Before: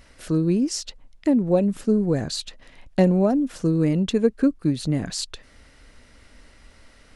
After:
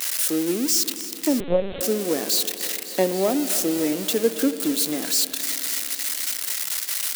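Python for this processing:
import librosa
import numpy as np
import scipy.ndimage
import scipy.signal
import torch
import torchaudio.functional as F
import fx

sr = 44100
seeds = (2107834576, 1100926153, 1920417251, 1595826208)

p1 = x + 0.5 * 10.0 ** (-15.5 / 20.0) * np.diff(np.sign(x), prepend=np.sign(x[:1]))
p2 = scipy.signal.sosfilt(scipy.signal.butter(4, 270.0, 'highpass', fs=sr, output='sos'), p1)
p3 = p2 + fx.echo_thinned(p2, sr, ms=277, feedback_pct=80, hz=490.0, wet_db=-14.0, dry=0)
p4 = fx.rev_spring(p3, sr, rt60_s=3.8, pass_ms=(53,), chirp_ms=60, drr_db=11.5)
y = fx.lpc_vocoder(p4, sr, seeds[0], excitation='pitch_kept', order=10, at=(1.4, 1.81))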